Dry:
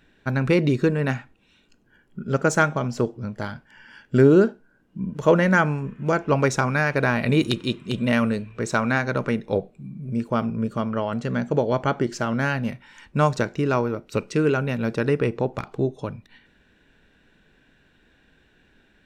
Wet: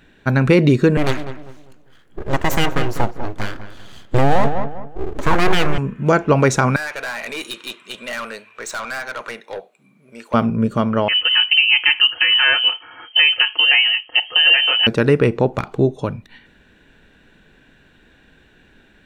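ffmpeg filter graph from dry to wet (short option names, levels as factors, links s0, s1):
-filter_complex "[0:a]asettb=1/sr,asplit=3[s0][s1][s2];[s0]atrim=end=0.974[s3];[s1]atrim=start=0.97:end=5.78,asetpts=PTS-STARTPTS,afade=t=in:d=0.004:c=qsin,afade=t=out:st=4.806:d=0.004:c=qsin,aeval=exprs='abs(val(0))':c=same,asplit=2[s4][s5];[s5]adelay=198,lowpass=f=1600:p=1,volume=0.316,asplit=2[s6][s7];[s7]adelay=198,lowpass=f=1600:p=1,volume=0.35,asplit=2[s8][s9];[s9]adelay=198,lowpass=f=1600:p=1,volume=0.35,asplit=2[s10][s11];[s11]adelay=198,lowpass=f=1600:p=1,volume=0.35[s12];[s4][s6][s8][s10][s12]amix=inputs=5:normalize=0,atrim=end_sample=212121[s13];[s2]atrim=start=5.776[s14];[s3][s13]acrossfade=d=0.004:c1=hsin:c2=qsin[s15];[s15][s14]acrossfade=d=0.004:c1=qsin:c2=hsin,asettb=1/sr,asplit=3[s16][s17][s18];[s16]atrim=end=6.764[s19];[s17]atrim=start=6.76:end=10.34,asetpts=PTS-STARTPTS,afade=t=in:d=0.004:c=qsin,afade=t=out:st=3.576:d=0.004:c=qsin,highpass=860,aeval=exprs='(tanh(31.6*val(0)+0.15)-tanh(0.15))/31.6':c=same[s20];[s18]atrim=start=10.336[s21];[s19][s20]acrossfade=d=0.004:c1=hsin:c2=qsin[s22];[s22][s21]acrossfade=d=0.004:c1=qsin:c2=hsin,asettb=1/sr,asplit=3[s23][s24][s25];[s23]atrim=end=11.084[s26];[s24]atrim=start=11.08:end=14.87,asetpts=PTS-STARTPTS,afade=t=in:d=0.004:c=qsin,afade=t=out:st=3.786:d=0.004:c=qsin,aecho=1:1:5.2:0.78,atrim=end_sample=167139,lowpass=f=2700:t=q:w=0.5098,lowpass=f=2700:t=q:w=0.6013,lowpass=f=2700:t=q:w=0.9,lowpass=f=2700:t=q:w=2.563,afreqshift=-3200[s27];[s25]atrim=start=14.866[s28];[s26][s27]acrossfade=d=0.004:c1=hsin:c2=qsin[s29];[s29][s28]acrossfade=d=0.004:c1=qsin:c2=hsin,equalizer=f=5200:w=6.3:g=-4.5,alimiter=level_in=3.16:limit=0.891:release=50:level=0:latency=1,volume=0.75"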